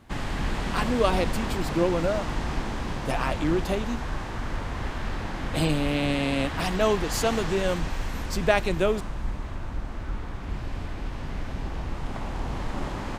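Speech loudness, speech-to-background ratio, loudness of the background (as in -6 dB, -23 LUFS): -27.0 LUFS, 6.0 dB, -33.0 LUFS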